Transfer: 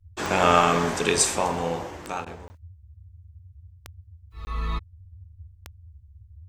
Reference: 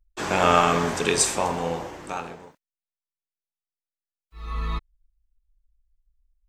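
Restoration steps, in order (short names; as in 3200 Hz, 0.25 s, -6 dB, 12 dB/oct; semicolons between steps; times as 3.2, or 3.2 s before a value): de-click; interpolate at 2.48/4.45, 20 ms; interpolate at 2.25, 12 ms; noise print and reduce 30 dB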